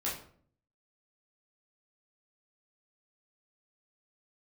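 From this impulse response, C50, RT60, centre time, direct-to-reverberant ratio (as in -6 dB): 5.5 dB, 0.55 s, 36 ms, -7.0 dB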